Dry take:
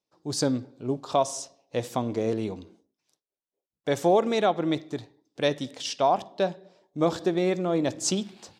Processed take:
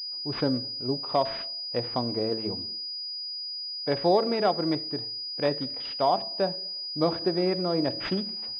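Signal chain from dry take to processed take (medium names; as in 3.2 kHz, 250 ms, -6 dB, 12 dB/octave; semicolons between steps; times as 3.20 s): de-hum 111.6 Hz, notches 6; class-D stage that switches slowly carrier 4.9 kHz; trim -1 dB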